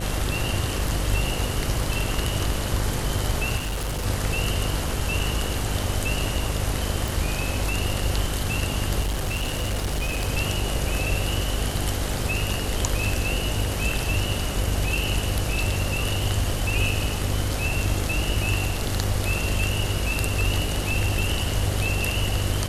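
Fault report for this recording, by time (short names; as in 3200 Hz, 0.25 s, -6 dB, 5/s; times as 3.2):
buzz 50 Hz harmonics 15 -29 dBFS
3.56–4.06 clipped -24 dBFS
7.08 pop
9.01–10.29 clipped -21.5 dBFS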